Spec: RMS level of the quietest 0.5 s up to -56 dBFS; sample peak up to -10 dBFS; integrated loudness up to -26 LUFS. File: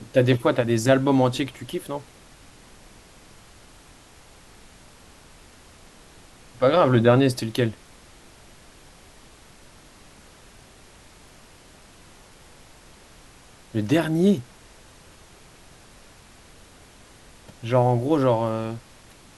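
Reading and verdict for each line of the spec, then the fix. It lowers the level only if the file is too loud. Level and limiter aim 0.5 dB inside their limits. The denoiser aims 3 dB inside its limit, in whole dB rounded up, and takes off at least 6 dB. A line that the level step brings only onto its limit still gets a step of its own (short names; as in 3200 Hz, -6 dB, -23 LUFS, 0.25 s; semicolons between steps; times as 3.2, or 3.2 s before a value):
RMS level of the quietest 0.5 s -50 dBFS: fail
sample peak -4.5 dBFS: fail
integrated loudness -21.5 LUFS: fail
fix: denoiser 6 dB, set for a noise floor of -50 dBFS; gain -5 dB; limiter -10.5 dBFS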